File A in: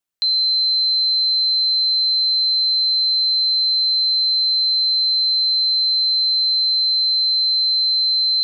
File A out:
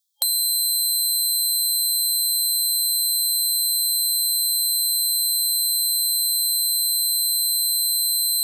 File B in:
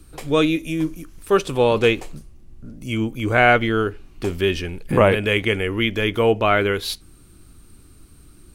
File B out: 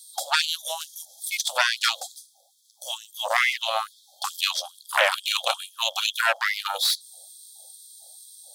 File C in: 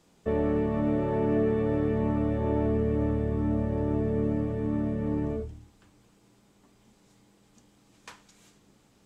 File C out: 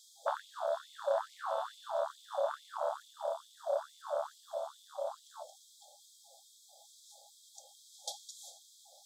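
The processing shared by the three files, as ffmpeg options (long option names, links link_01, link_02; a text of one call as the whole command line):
ffmpeg -i in.wav -filter_complex "[0:a]afftfilt=real='re*(1-between(b*sr/4096,840,3200))':imag='im*(1-between(b*sr/4096,840,3200))':win_size=4096:overlap=0.75,aeval=exprs='0.596*(cos(1*acos(clip(val(0)/0.596,-1,1)))-cos(1*PI/2))+0.0531*(cos(4*acos(clip(val(0)/0.596,-1,1)))-cos(4*PI/2))+0.168*(cos(6*acos(clip(val(0)/0.596,-1,1)))-cos(6*PI/2))+0.266*(cos(7*acos(clip(val(0)/0.596,-1,1)))-cos(7*PI/2))':channel_layout=same,acrossover=split=340|1900[link_01][link_02][link_03];[link_01]acompressor=threshold=-26dB:ratio=4[link_04];[link_02]acompressor=threshold=-27dB:ratio=4[link_05];[link_03]acompressor=threshold=-25dB:ratio=4[link_06];[link_04][link_05][link_06]amix=inputs=3:normalize=0,afftfilt=real='re*gte(b*sr/1024,490*pow(2100/490,0.5+0.5*sin(2*PI*2.3*pts/sr)))':imag='im*gte(b*sr/1024,490*pow(2100/490,0.5+0.5*sin(2*PI*2.3*pts/sr)))':win_size=1024:overlap=0.75,volume=4.5dB" out.wav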